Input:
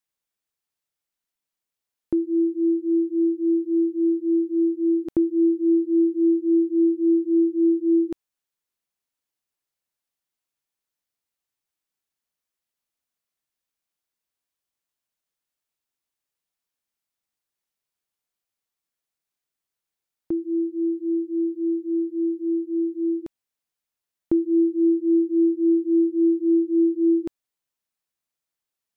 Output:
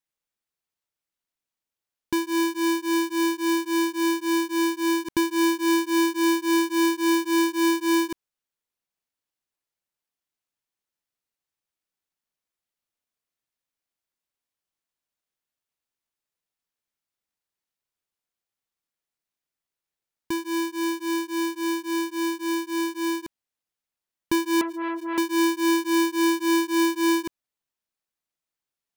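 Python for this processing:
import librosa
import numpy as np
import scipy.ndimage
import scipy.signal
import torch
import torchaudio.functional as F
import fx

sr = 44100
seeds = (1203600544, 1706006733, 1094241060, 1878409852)

y = fx.halfwave_hold(x, sr)
y = fx.transformer_sat(y, sr, knee_hz=1000.0, at=(24.61, 25.18))
y = y * librosa.db_to_amplitude(-5.5)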